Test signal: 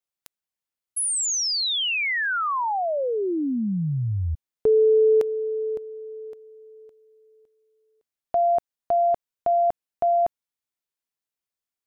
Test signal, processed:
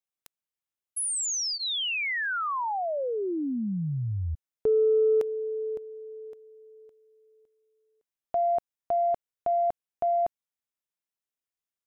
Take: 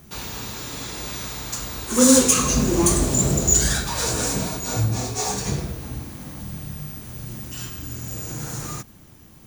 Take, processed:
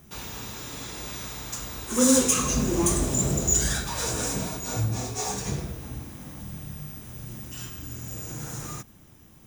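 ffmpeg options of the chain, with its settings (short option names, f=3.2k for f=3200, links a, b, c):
-filter_complex "[0:a]bandreject=f=4.4k:w=11,asplit=2[a][b];[b]asoftclip=type=tanh:threshold=-10.5dB,volume=-10dB[c];[a][c]amix=inputs=2:normalize=0,volume=-7dB"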